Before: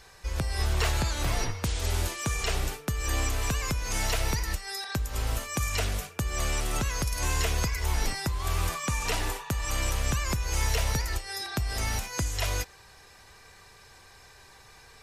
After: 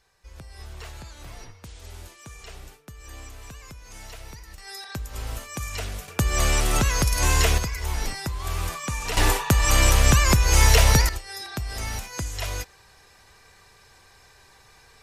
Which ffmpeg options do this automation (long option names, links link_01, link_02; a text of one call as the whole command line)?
ffmpeg -i in.wav -af "asetnsamples=nb_out_samples=441:pad=0,asendcmd='4.58 volume volume -3dB;6.08 volume volume 7.5dB;7.58 volume volume 0dB;9.17 volume volume 11dB;11.09 volume volume -1dB',volume=-13.5dB" out.wav